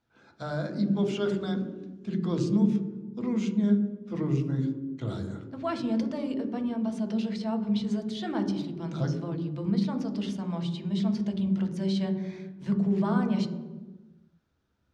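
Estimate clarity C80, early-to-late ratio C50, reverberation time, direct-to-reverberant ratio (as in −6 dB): 9.0 dB, 7.5 dB, 1.3 s, 3.5 dB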